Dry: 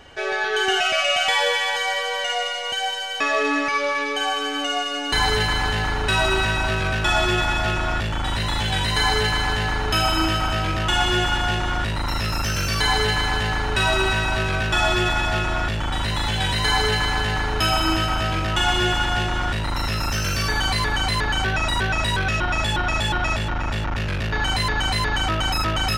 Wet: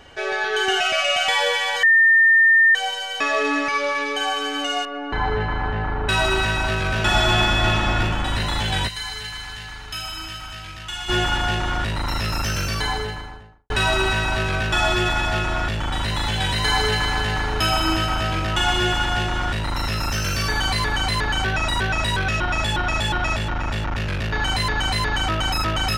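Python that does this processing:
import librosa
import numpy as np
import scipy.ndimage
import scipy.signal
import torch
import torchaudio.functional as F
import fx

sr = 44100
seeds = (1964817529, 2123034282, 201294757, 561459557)

y = fx.lowpass(x, sr, hz=1400.0, slope=12, at=(4.85, 6.09))
y = fx.reverb_throw(y, sr, start_s=6.86, length_s=1.14, rt60_s=2.3, drr_db=-0.5)
y = fx.tone_stack(y, sr, knobs='5-5-5', at=(8.87, 11.08), fade=0.02)
y = fx.studio_fade_out(y, sr, start_s=12.46, length_s=1.24)
y = fx.edit(y, sr, fx.bleep(start_s=1.83, length_s=0.92, hz=1810.0, db=-10.5), tone=tone)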